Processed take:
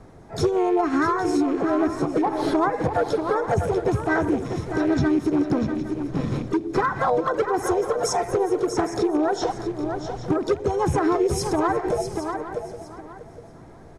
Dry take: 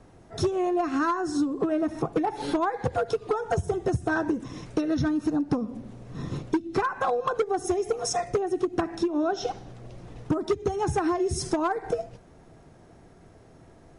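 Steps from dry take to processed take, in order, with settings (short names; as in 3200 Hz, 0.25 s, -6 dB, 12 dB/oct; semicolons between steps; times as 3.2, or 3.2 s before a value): rattling part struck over -36 dBFS, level -36 dBFS; high shelf 5300 Hz -6 dB; feedback echo 0.642 s, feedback 19%, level -9 dB; limiter -20 dBFS, peak gain reduction 6 dB; bell 2700 Hz -11 dB 0.25 oct; echo 0.812 s -14 dB; harmoniser +4 st -9 dB; gain +5.5 dB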